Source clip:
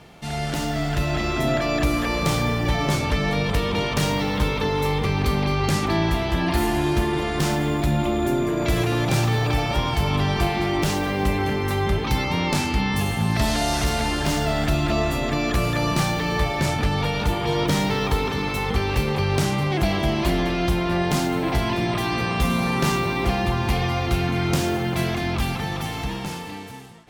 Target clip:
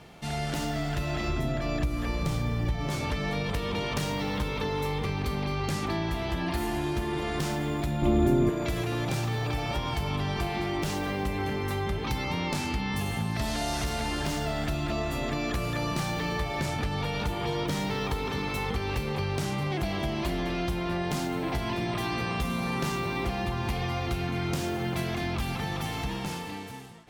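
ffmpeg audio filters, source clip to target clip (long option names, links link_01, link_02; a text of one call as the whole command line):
ffmpeg -i in.wav -filter_complex "[0:a]asplit=3[link_01][link_02][link_03];[link_01]afade=type=out:start_time=1.28:duration=0.02[link_04];[link_02]lowshelf=frequency=180:gain=12,afade=type=in:start_time=1.28:duration=0.02,afade=type=out:start_time=2.87:duration=0.02[link_05];[link_03]afade=type=in:start_time=2.87:duration=0.02[link_06];[link_04][link_05][link_06]amix=inputs=3:normalize=0,acompressor=threshold=-24dB:ratio=4,asettb=1/sr,asplit=3[link_07][link_08][link_09];[link_07]atrim=end=8.024[link_10];[link_08]atrim=start=8.02:end=8.5,asetpts=PTS-STARTPTS,afade=type=in:duration=0.004:curve=qsin,afade=type=out:start_time=0.476:duration=0.004:curve=qsin,lowshelf=frequency=430:gain=11.5[link_11];[link_09]atrim=start=8.496[link_12];[link_10][link_11]acrossfade=duration=0.004:curve1=hsin:curve2=qsin[link_13];[link_13][link_12]acrossfade=duration=0.004:curve1=qsin:curve2=hsin,volume=-3dB" out.wav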